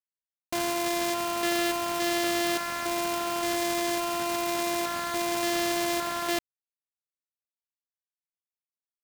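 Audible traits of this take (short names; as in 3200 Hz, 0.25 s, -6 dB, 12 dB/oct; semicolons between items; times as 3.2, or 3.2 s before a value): a buzz of ramps at a fixed pitch in blocks of 128 samples; random-step tremolo, depth 55%; a quantiser's noise floor 6-bit, dither none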